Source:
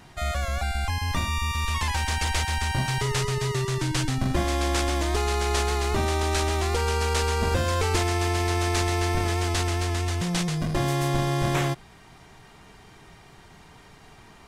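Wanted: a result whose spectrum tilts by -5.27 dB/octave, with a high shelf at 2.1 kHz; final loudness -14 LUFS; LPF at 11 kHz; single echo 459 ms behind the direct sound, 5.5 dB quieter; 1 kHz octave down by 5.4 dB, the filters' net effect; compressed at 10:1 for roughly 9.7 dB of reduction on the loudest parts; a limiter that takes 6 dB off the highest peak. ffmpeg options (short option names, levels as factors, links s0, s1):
-af "lowpass=11000,equalizer=f=1000:t=o:g=-6.5,highshelf=f=2100:g=-4,acompressor=threshold=0.0282:ratio=10,alimiter=level_in=1.5:limit=0.0631:level=0:latency=1,volume=0.668,aecho=1:1:459:0.531,volume=11.9"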